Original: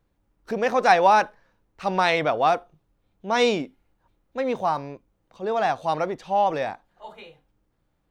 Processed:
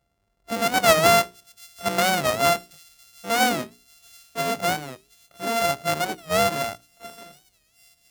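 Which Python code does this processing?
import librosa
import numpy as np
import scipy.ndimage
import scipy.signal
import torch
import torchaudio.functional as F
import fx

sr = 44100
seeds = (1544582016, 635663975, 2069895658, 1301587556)

p1 = np.r_[np.sort(x[:len(x) // 64 * 64].reshape(-1, 64), axis=1).ravel(), x[len(x) // 64 * 64:]]
p2 = scipy.signal.sosfilt(scipy.signal.butter(2, 50.0, 'highpass', fs=sr, output='sos'), p1)
p3 = fx.hum_notches(p2, sr, base_hz=60, count=7)
p4 = p3 + fx.echo_wet_highpass(p3, sr, ms=726, feedback_pct=55, hz=4100.0, wet_db=-21, dry=0)
y = fx.record_warp(p4, sr, rpm=45.0, depth_cents=160.0)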